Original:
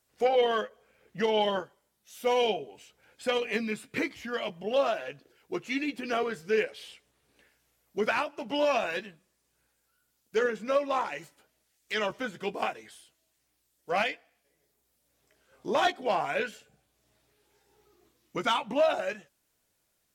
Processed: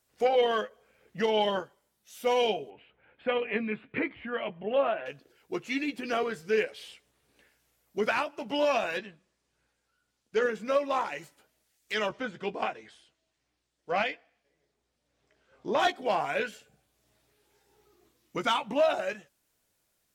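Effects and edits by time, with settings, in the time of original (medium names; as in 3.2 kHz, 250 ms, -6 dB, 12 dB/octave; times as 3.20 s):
2.70–5.06 s: inverse Chebyshev low-pass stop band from 5.5 kHz
8.98–10.43 s: Bessel low-pass 5.6 kHz
12.09–15.80 s: distance through air 94 m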